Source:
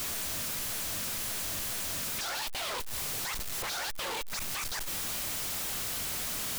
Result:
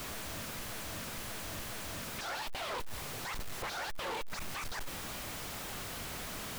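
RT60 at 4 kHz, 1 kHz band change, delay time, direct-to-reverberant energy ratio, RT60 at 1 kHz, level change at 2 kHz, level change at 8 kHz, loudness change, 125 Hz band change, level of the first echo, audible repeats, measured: no reverb, -1.0 dB, no echo, no reverb, no reverb, -3.0 dB, -10.0 dB, -7.5 dB, 0.0 dB, no echo, no echo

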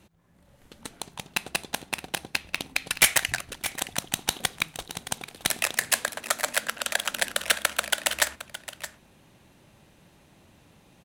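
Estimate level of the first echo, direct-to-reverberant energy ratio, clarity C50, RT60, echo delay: -13.5 dB, no reverb, no reverb, no reverb, 619 ms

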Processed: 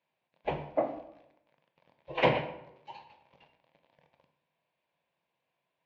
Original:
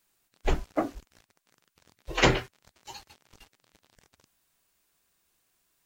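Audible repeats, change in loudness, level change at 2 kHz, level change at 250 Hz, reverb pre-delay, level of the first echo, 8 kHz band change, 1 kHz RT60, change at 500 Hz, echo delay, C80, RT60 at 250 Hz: no echo, -3.5 dB, -5.5 dB, -6.0 dB, 17 ms, no echo, under -25 dB, 0.75 s, 0.0 dB, no echo, 11.0 dB, 0.85 s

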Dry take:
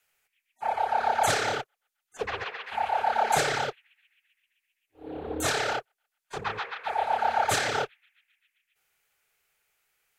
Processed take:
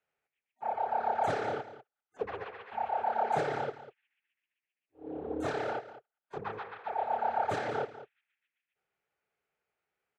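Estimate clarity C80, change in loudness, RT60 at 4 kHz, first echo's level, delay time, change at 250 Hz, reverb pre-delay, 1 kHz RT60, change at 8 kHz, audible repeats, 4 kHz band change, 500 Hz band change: no reverb, -6.5 dB, no reverb, -14.5 dB, 196 ms, -1.5 dB, no reverb, no reverb, under -20 dB, 1, -17.5 dB, -3.0 dB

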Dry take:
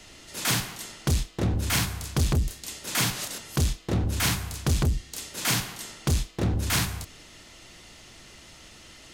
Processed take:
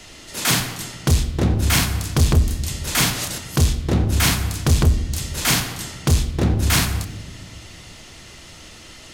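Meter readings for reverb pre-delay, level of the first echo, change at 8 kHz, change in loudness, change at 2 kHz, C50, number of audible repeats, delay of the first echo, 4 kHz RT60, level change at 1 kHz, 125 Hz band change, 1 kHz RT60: 12 ms, no echo, +6.5 dB, +7.5 dB, +7.0 dB, 13.5 dB, no echo, no echo, 0.85 s, +7.0 dB, +8.0 dB, 1.1 s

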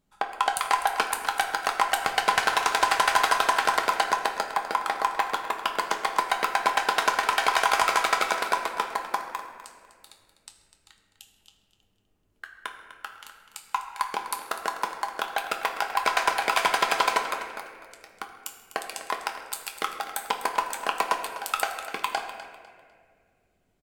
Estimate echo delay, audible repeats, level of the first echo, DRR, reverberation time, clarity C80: 250 ms, 3, -13.5 dB, 2.5 dB, 2.1 s, 7.0 dB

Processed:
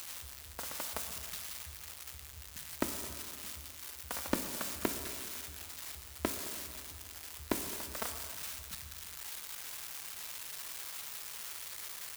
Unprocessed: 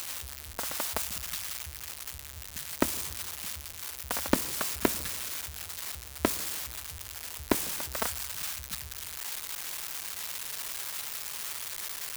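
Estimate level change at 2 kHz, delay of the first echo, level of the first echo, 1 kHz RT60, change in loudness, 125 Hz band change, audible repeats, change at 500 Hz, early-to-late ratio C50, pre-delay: -6.5 dB, 216 ms, -18.5 dB, 2.2 s, -6.5 dB, -6.0 dB, 1, -6.5 dB, 8.0 dB, 7 ms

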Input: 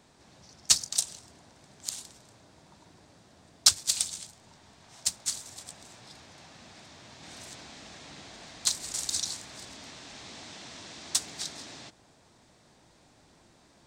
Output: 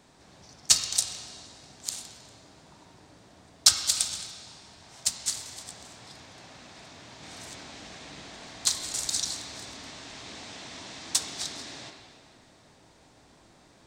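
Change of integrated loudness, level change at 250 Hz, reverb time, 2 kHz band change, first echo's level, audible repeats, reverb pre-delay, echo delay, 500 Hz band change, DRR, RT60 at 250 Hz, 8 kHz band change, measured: +1.0 dB, +3.0 dB, 2.2 s, +3.0 dB, no echo, no echo, 4 ms, no echo, +3.5 dB, 3.0 dB, 2.2 s, +1.5 dB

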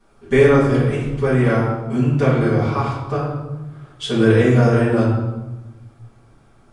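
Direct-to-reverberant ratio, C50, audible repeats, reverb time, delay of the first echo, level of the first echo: -11.0 dB, 1.5 dB, no echo, 1.1 s, no echo, no echo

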